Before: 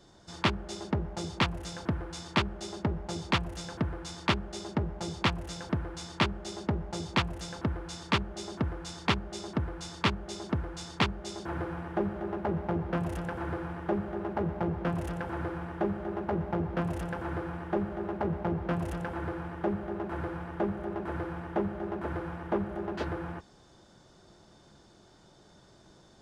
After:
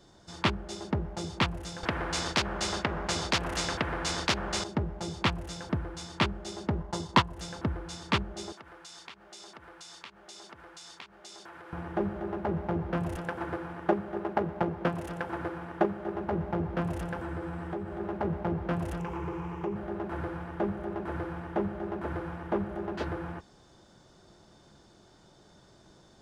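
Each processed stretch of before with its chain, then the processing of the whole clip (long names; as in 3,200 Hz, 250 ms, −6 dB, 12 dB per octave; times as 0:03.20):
0:01.83–0:04.64: spectral tilt −3 dB per octave + every bin compressed towards the loudest bin 4 to 1
0:06.78–0:07.38: parametric band 1,000 Hz +9.5 dB 0.2 octaves + notch filter 2,400 Hz, Q 11 + transient designer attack +5 dB, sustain −6 dB
0:08.52–0:11.73: high-pass filter 1,400 Hz 6 dB per octave + downward compressor 8 to 1, threshold −43 dBFS
0:13.16–0:16.15: high-pass filter 190 Hz 6 dB per octave + transient designer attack +7 dB, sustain −1 dB
0:17.21–0:18.00: downward compressor 2.5 to 1, threshold −35 dBFS + parametric band 8,100 Hz +7 dB 0.24 octaves + double-tracking delay 12 ms −7 dB
0:18.99–0:19.76: EQ curve with evenly spaced ripples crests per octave 0.75, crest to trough 10 dB + downward compressor 2 to 1, threshold −32 dBFS
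whole clip: no processing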